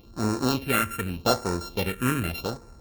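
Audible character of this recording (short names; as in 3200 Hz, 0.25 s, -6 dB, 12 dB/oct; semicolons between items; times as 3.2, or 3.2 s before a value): a buzz of ramps at a fixed pitch in blocks of 32 samples; phasing stages 4, 0.84 Hz, lowest notch 740–3000 Hz; AAC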